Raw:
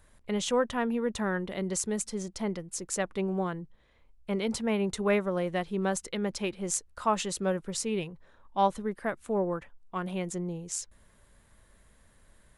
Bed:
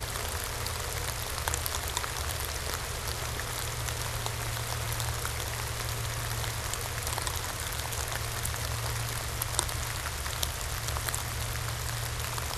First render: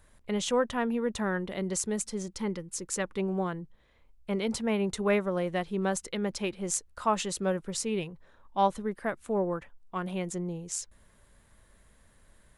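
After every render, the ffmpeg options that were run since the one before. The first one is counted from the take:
-filter_complex "[0:a]asettb=1/sr,asplit=3[a][b][c];[a]atrim=end=2.284[d];[b]atrim=start=2.28:end=3.2,asetpts=PTS-STARTPTS,afade=t=in:d=0.004:c=qsin,afade=t=out:st=0.916:d=0.004:c=qsin,asuperstop=centerf=680:order=4:qfactor=3.6[e];[c]atrim=start=3.196[f];[d][e]acrossfade=d=0.004:c1=hsin:c2=qsin[g];[g][f]acrossfade=d=0.004:c1=qsin:c2=hsin"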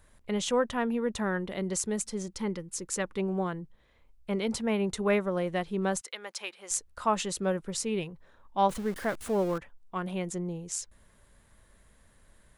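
-filter_complex "[0:a]asettb=1/sr,asplit=3[a][b][c];[a]atrim=end=6.014[d];[b]atrim=start=6.01:end=6.71,asetpts=PTS-STARTPTS,afade=t=in:d=0.004:c=qsin,afade=t=out:st=0.696:d=0.004:c=qsin,highpass=870[e];[c]atrim=start=6.706[f];[d][e]acrossfade=d=0.004:c1=hsin:c2=qsin[g];[g][f]acrossfade=d=0.004:c1=qsin:c2=hsin,asettb=1/sr,asplit=3[h][i][j];[h]atrim=end=8.694[k];[i]atrim=start=8.69:end=9.58,asetpts=PTS-STARTPTS,afade=t=in:d=0.004:c=qsin,afade=t=out:st=0.886:d=0.004:c=qsin,aeval=exprs='val(0)+0.5*0.0126*sgn(val(0))':c=same[l];[j]atrim=start=9.576[m];[k][l]acrossfade=d=0.004:c1=hsin:c2=qsin[n];[n][m]acrossfade=d=0.004:c1=qsin:c2=hsin"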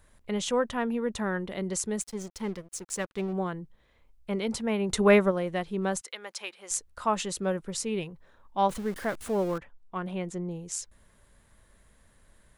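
-filter_complex "[0:a]asettb=1/sr,asplit=3[a][b][c];[a]atrim=end=2.014[d];[b]atrim=start=2.01:end=3.33,asetpts=PTS-STARTPTS,afade=t=in:d=0.004:c=qsin,afade=t=out:st=1.316:d=0.004:c=qsin,aeval=exprs='sgn(val(0))*max(abs(val(0))-0.00473,0)':c=same[e];[c]atrim=start=3.326[f];[d][e]acrossfade=d=0.004:c1=hsin:c2=qsin[g];[g][f]acrossfade=d=0.004:c1=qsin:c2=hsin,asplit=3[h][i][j];[h]afade=t=out:st=4.89:d=0.02[k];[i]acontrast=81,afade=t=in:st=4.89:d=0.02,afade=t=out:st=5.3:d=0.02[l];[j]afade=t=in:st=5.3:d=0.02[m];[k][l][m]amix=inputs=3:normalize=0,asettb=1/sr,asplit=3[n][o][p];[n]atrim=end=9.584[q];[o]atrim=start=9.58:end=10.51,asetpts=PTS-STARTPTS,afade=t=in:d=0.004:c=qsin,afade=t=out:st=0.926:d=0.004:c=qsin,highshelf=f=5.7k:g=-10[r];[p]atrim=start=10.506[s];[q][r]acrossfade=d=0.004:c1=hsin:c2=qsin[t];[t][s]acrossfade=d=0.004:c1=qsin:c2=hsin"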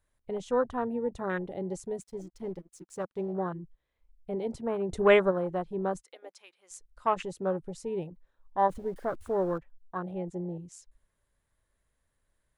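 -af "afwtdn=0.0224,equalizer=f=210:w=7.5:g=-12"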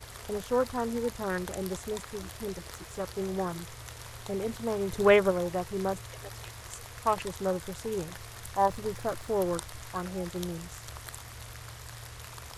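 -filter_complex "[1:a]volume=-11dB[a];[0:a][a]amix=inputs=2:normalize=0"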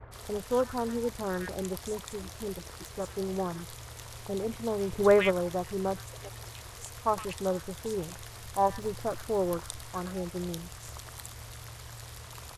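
-filter_complex "[0:a]acrossover=split=1700[a][b];[b]adelay=110[c];[a][c]amix=inputs=2:normalize=0"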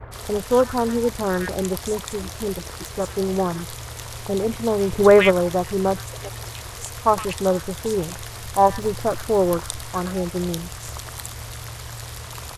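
-af "volume=10dB,alimiter=limit=-3dB:level=0:latency=1"

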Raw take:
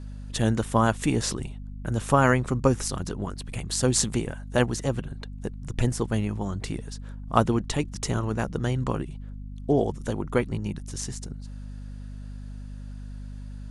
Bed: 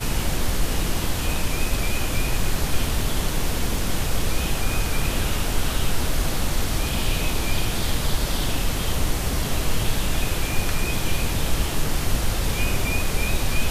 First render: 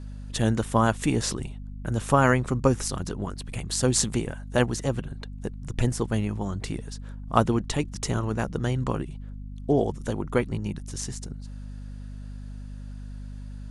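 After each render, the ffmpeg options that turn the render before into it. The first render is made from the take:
-af anull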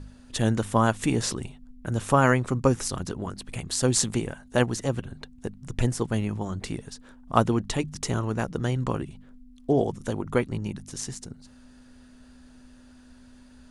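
-af "bandreject=f=50:t=h:w=4,bandreject=f=100:t=h:w=4,bandreject=f=150:t=h:w=4,bandreject=f=200:t=h:w=4"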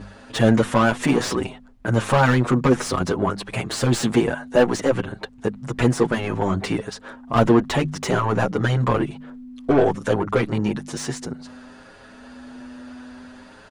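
-filter_complex "[0:a]asplit=2[a][b];[b]highpass=f=720:p=1,volume=30dB,asoftclip=type=tanh:threshold=-3dB[c];[a][c]amix=inputs=2:normalize=0,lowpass=f=1.1k:p=1,volume=-6dB,asplit=2[d][e];[e]adelay=7.3,afreqshift=0.59[f];[d][f]amix=inputs=2:normalize=1"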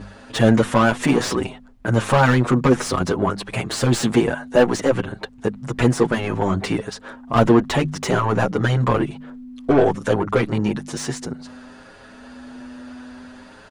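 -af "volume=1.5dB"

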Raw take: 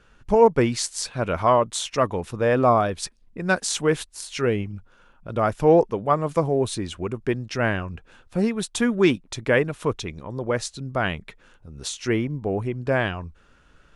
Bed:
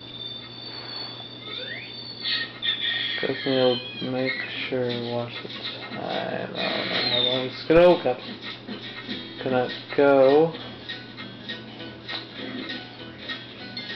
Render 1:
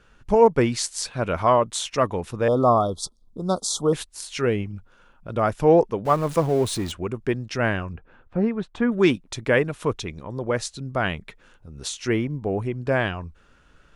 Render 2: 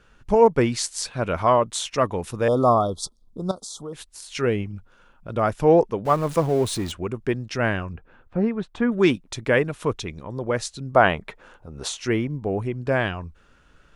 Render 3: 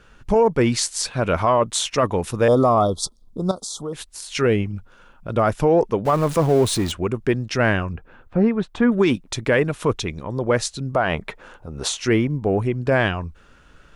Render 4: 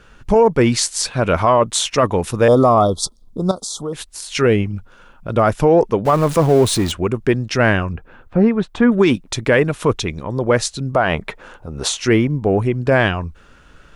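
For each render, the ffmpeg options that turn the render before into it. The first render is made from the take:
-filter_complex "[0:a]asettb=1/sr,asplit=3[a][b][c];[a]atrim=end=2.484[d];[b]atrim=start=2.48:end=3.93,asetpts=PTS-STARTPTS,afade=t=in:d=0.004:c=qsin,afade=t=out:st=1.446:d=0.004:c=qsin,asuperstop=centerf=2100:order=20:qfactor=1.1[e];[c]atrim=start=3.926[f];[d][e]acrossfade=d=0.004:c1=hsin:c2=qsin[g];[g][f]acrossfade=d=0.004:c1=qsin:c2=hsin,asettb=1/sr,asplit=3[h][i][j];[h]atrim=end=6.054[k];[i]atrim=start=6.05:end=6.92,asetpts=PTS-STARTPTS,afade=t=in:d=0.004:c=qsin,afade=t=out:st=0.866:d=0.004:c=qsin,aeval=exprs='val(0)+0.5*0.0224*sgn(val(0))':c=same[l];[j]atrim=start=6.916[m];[k][l]acrossfade=d=0.004:c1=hsin:c2=qsin[n];[n][m]acrossfade=d=0.004:c1=qsin:c2=hsin,asettb=1/sr,asplit=3[o][p][q];[o]atrim=end=7.934[r];[p]atrim=start=7.93:end=8.92,asetpts=PTS-STARTPTS,afade=t=in:d=0.004:c=qsin,afade=t=out:st=0.986:d=0.004:c=qsin,lowpass=1.7k[s];[q]atrim=start=8.916[t];[r][s]acrossfade=d=0.004:c1=hsin:c2=qsin[u];[u][t]acrossfade=d=0.004:c1=qsin:c2=hsin"
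-filter_complex "[0:a]asettb=1/sr,asplit=3[a][b][c];[a]atrim=end=2.204[d];[b]atrim=start=2.2:end=2.75,asetpts=PTS-STARTPTS,afade=t=in:d=0.004:c=qsin,afade=t=out:st=0.546:d=0.004:c=qsin,highshelf=f=6.1k:g=8.5[e];[c]atrim=start=2.746[f];[d][e]acrossfade=d=0.004:c1=hsin:c2=qsin[g];[g][f]acrossfade=d=0.004:c1=qsin:c2=hsin,asettb=1/sr,asplit=3[h][i][j];[h]atrim=end=3.514[k];[i]atrim=start=3.51:end=4.35,asetpts=PTS-STARTPTS,afade=t=in:d=0.004:c=qsin,afade=t=out:st=0.836:d=0.004:c=qsin,acompressor=threshold=-38dB:ratio=2.5:attack=3.2:release=140:knee=1:detection=peak[l];[j]atrim=start=4.346[m];[k][l]acrossfade=d=0.004:c1=hsin:c2=qsin[n];[n][m]acrossfade=d=0.004:c1=qsin:c2=hsin,asplit=3[o][p][q];[o]afade=t=out:st=10.92:d=0.02[r];[p]equalizer=f=760:t=o:w=2.3:g=11,afade=t=in:st=10.92:d=0.02,afade=t=out:st=11.99:d=0.02[s];[q]afade=t=in:st=11.99:d=0.02[t];[r][s][t]amix=inputs=3:normalize=0"
-af "alimiter=limit=-13.5dB:level=0:latency=1:release=26,acontrast=34"
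-af "volume=4dB"

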